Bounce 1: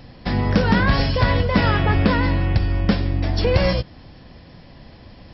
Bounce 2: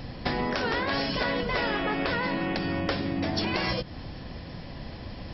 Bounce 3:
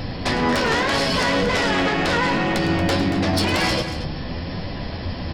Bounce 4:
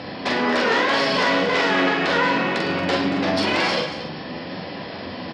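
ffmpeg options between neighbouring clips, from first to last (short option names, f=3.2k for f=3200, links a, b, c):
-af "afftfilt=real='re*lt(hypot(re,im),0.562)':imag='im*lt(hypot(re,im),0.562)':win_size=1024:overlap=0.75,acompressor=threshold=-29dB:ratio=6,volume=4dB"
-af "aeval=exprs='0.237*sin(PI/2*3.55*val(0)/0.237)':c=same,flanger=delay=9.8:depth=3.9:regen=45:speed=0.63:shape=triangular,aecho=1:1:107|231:0.224|0.266"
-filter_complex "[0:a]highpass=250,lowpass=4.5k,asplit=2[a][b];[b]adelay=44,volume=-3.5dB[c];[a][c]amix=inputs=2:normalize=0"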